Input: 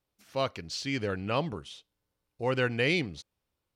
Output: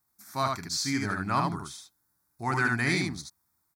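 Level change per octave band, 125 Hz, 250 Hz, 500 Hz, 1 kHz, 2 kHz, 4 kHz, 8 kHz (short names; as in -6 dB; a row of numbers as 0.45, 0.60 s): +2.5, +2.5, -6.0, +7.0, +4.0, +1.0, +10.5 dB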